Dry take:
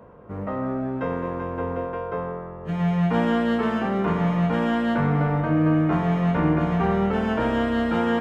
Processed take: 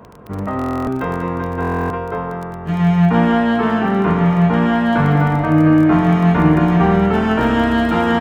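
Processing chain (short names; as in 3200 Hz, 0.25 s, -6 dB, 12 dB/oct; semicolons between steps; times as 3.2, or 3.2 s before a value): bell 530 Hz -9.5 dB 0.27 oct; feedback echo 0.196 s, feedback 44%, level -9 dB; crackle 23/s -33 dBFS; 3.05–4.93 high shelf 3500 Hz -7 dB; stuck buffer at 0.57/1.6, samples 1024, times 12; gain +8 dB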